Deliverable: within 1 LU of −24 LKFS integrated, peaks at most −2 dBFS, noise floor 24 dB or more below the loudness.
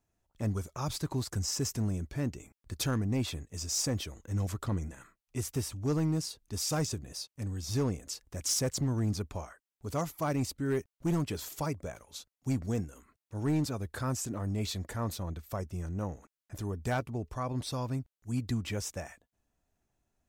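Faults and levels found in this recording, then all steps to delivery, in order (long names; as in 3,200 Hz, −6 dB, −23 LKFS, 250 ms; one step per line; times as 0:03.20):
share of clipped samples 0.8%; peaks flattened at −24.0 dBFS; integrated loudness −34.5 LKFS; sample peak −24.0 dBFS; target loudness −24.0 LKFS
→ clipped peaks rebuilt −24 dBFS
level +10.5 dB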